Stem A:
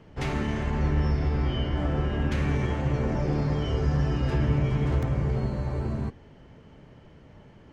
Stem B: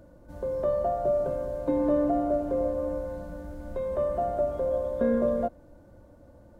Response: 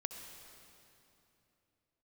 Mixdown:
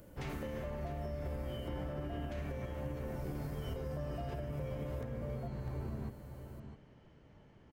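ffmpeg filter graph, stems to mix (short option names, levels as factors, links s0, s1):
-filter_complex "[0:a]alimiter=limit=0.1:level=0:latency=1:release=69,volume=0.316,asplit=2[s0][s1];[s1]volume=0.299[s2];[1:a]aemphasis=mode=production:type=75fm,acompressor=threshold=0.0178:ratio=6,volume=0.562[s3];[s2]aecho=0:1:652:1[s4];[s0][s3][s4]amix=inputs=3:normalize=0,alimiter=level_in=2.24:limit=0.0631:level=0:latency=1:release=427,volume=0.447"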